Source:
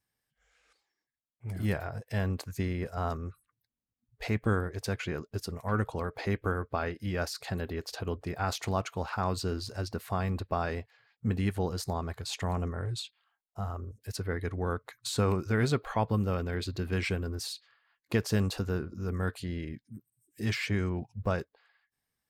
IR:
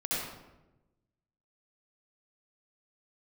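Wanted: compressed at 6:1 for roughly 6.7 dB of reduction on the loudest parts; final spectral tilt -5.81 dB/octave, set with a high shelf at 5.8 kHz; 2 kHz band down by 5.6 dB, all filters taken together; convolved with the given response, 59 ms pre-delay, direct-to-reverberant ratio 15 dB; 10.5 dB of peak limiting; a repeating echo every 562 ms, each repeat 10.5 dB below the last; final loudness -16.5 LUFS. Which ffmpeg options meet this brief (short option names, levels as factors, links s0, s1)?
-filter_complex "[0:a]equalizer=f=2000:t=o:g=-7,highshelf=f=5800:g=-6.5,acompressor=threshold=0.0316:ratio=6,alimiter=level_in=1.88:limit=0.0631:level=0:latency=1,volume=0.531,aecho=1:1:562|1124|1686:0.299|0.0896|0.0269,asplit=2[s0][s1];[1:a]atrim=start_sample=2205,adelay=59[s2];[s1][s2]afir=irnorm=-1:irlink=0,volume=0.0841[s3];[s0][s3]amix=inputs=2:normalize=0,volume=14.1"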